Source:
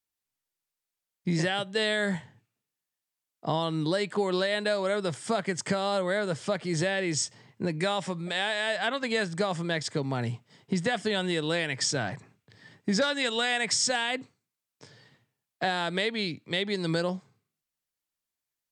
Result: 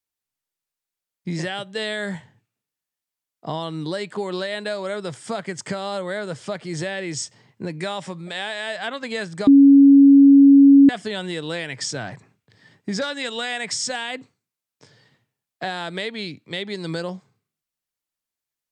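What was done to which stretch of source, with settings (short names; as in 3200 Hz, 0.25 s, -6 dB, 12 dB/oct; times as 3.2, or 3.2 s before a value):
9.47–10.89 bleep 278 Hz -6.5 dBFS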